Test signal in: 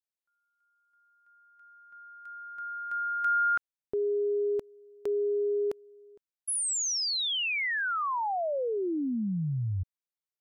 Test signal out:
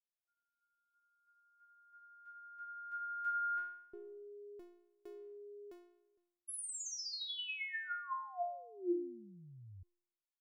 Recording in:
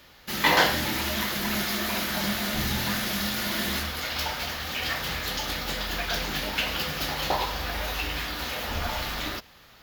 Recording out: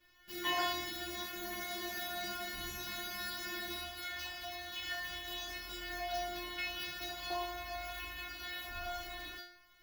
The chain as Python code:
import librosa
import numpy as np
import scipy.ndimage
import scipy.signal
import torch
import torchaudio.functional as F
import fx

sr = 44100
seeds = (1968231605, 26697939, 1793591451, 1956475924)

y = fx.bass_treble(x, sr, bass_db=6, treble_db=-2)
y = fx.stiff_resonator(y, sr, f0_hz=350.0, decay_s=0.71, stiffness=0.002)
y = y * librosa.db_to_amplitude(6.5)